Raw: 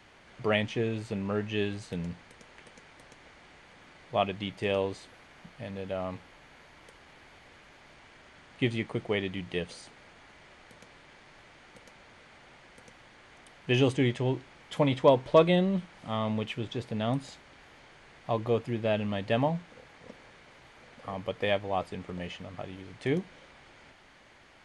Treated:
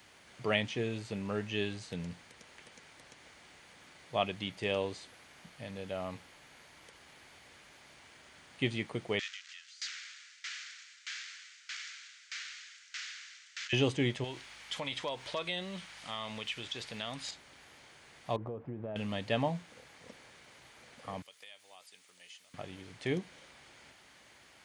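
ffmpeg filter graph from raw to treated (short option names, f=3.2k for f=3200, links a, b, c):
-filter_complex "[0:a]asettb=1/sr,asplit=3[a][b][c];[a]atrim=end=9.194[d];[b]atrim=start=9.19:end=13.73,asetpts=PTS-STARTPTS,afade=t=in:d=0.004:c=qsin,afade=t=out:st=4.536:d=0.004:c=qsin,aeval=exprs='val(0)+0.5*0.0316*sgn(val(0))':c=same,asuperpass=centerf=3300:order=12:qfactor=0.55,aeval=exprs='val(0)*pow(10,-23*if(lt(mod(1.6*n/s,1),2*abs(1.6)/1000),1-mod(1.6*n/s,1)/(2*abs(1.6)/1000),(mod(1.6*n/s,1)-2*abs(1.6)/1000)/(1-2*abs(1.6)/1000))/20)':c=same[e];[c]atrim=start=13.726[f];[d][e]acrossfade=d=0.004:c1=hsin:c2=qsin[g];[g][f]acrossfade=d=0.004:c1=qsin:c2=hsin,asettb=1/sr,asplit=3[h][i][j];[h]atrim=end=14.244[k];[i]atrim=start=14.24:end=17.31,asetpts=PTS-STARTPTS,afade=t=in:d=0.004:c=qsin,afade=t=out:st=3.066:d=0.004:c=qsin,tiltshelf=f=730:g=-8.5,acompressor=threshold=-34dB:ratio=2.5:attack=3.2:release=140:knee=1:detection=peak,aeval=exprs='val(0)+0.000794*(sin(2*PI*50*n/s)+sin(2*PI*2*50*n/s)/2+sin(2*PI*3*50*n/s)/3+sin(2*PI*4*50*n/s)/4+sin(2*PI*5*50*n/s)/5)':c=same[l];[j]atrim=start=17.306[m];[k][l]acrossfade=d=0.004:c1=hsin:c2=qsin[n];[n][m]acrossfade=d=0.004:c1=qsin:c2=hsin,asettb=1/sr,asplit=3[o][p][q];[o]atrim=end=18.364[r];[p]atrim=start=18.36:end=18.96,asetpts=PTS-STARTPTS,afade=t=in:d=0.004:c=qsin,afade=t=out:st=0.596:d=0.004:c=qsin,lowpass=1.1k,aemphasis=mode=reproduction:type=75fm,acompressor=threshold=-31dB:ratio=12:attack=3.2:release=140:knee=1:detection=peak[s];[q]atrim=start=18.956[t];[r][s]acrossfade=d=0.004:c1=hsin:c2=qsin[u];[u][t]acrossfade=d=0.004:c1=qsin:c2=hsin,asettb=1/sr,asplit=3[v][w][x];[v]atrim=end=21.224[y];[w]atrim=start=21.22:end=22.54,asetpts=PTS-STARTPTS,afade=t=in:d=0.004:c=qsin,afade=t=out:st=1.316:d=0.004:c=qsin,aderivative,acompressor=threshold=-46dB:ratio=6:attack=3.2:release=140:knee=1:detection=peak[z];[x]atrim=start=22.536[aa];[y][z]acrossfade=d=0.004:c1=hsin:c2=qsin[ab];[ab][aa]acrossfade=d=0.004:c1=qsin:c2=hsin,aemphasis=mode=production:type=75kf,acrossover=split=6300[ac][ad];[ad]acompressor=threshold=-59dB:ratio=4:attack=1:release=60[ae];[ac][ae]amix=inputs=2:normalize=0,highpass=55,volume=-5dB"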